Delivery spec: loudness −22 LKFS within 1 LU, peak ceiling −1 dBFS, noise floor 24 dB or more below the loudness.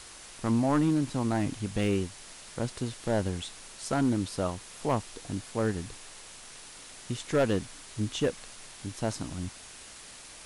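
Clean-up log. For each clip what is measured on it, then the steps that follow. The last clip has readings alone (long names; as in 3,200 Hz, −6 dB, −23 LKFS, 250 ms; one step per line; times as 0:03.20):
share of clipped samples 0.7%; peaks flattened at −19.0 dBFS; background noise floor −48 dBFS; target noise floor −55 dBFS; integrated loudness −31.0 LKFS; sample peak −19.0 dBFS; target loudness −22.0 LKFS
→ clipped peaks rebuilt −19 dBFS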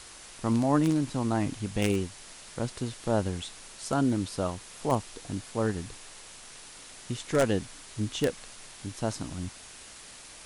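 share of clipped samples 0.0%; background noise floor −48 dBFS; target noise floor −55 dBFS
→ noise reduction from a noise print 7 dB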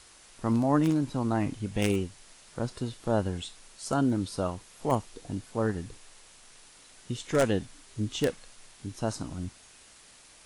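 background noise floor −55 dBFS; integrated loudness −30.5 LKFS; sample peak −10.0 dBFS; target loudness −22.0 LKFS
→ level +8.5 dB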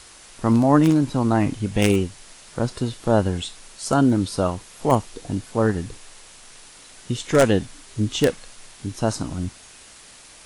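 integrated loudness −22.0 LKFS; sample peak −1.5 dBFS; background noise floor −46 dBFS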